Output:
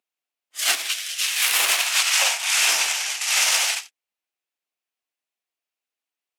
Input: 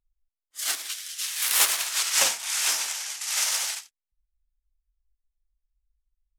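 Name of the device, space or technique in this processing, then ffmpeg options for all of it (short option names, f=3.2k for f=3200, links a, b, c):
laptop speaker: -filter_complex "[0:a]highpass=f=250:w=0.5412,highpass=f=250:w=1.3066,equalizer=f=710:t=o:w=0.35:g=4.5,equalizer=f=2.6k:t=o:w=0.59:g=6.5,highshelf=f=6.2k:g=-5,alimiter=limit=-16dB:level=0:latency=1:release=87,asettb=1/sr,asplit=3[a][b][c];[a]atrim=end=1.814[d];[b]atrim=start=1.81:end=2.58,asetpts=PTS-STARTPTS,afade=t=in:d=0.004:c=qsin,afade=t=out:st=0.766:d=0.004:c=qsin,highpass=f=560:w=0.5412,highpass=f=560:w=1.3066[e];[c]atrim=start=2.576[f];[d][e]acrossfade=d=0.004:c1=hsin:c2=qsin[g];[g][f]acrossfade=d=0.004:c1=qsin:c2=hsin,volume=8dB"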